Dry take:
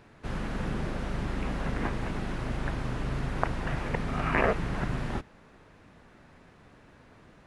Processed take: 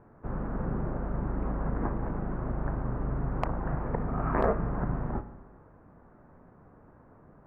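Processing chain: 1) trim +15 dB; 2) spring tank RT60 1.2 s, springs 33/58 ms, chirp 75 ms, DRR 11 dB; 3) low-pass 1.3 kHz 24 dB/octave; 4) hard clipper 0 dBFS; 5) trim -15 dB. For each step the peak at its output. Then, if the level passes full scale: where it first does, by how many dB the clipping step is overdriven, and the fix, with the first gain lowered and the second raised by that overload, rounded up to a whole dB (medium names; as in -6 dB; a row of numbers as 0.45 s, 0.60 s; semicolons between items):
+9.0 dBFS, +9.0 dBFS, +7.5 dBFS, 0.0 dBFS, -15.0 dBFS; step 1, 7.5 dB; step 1 +7 dB, step 5 -7 dB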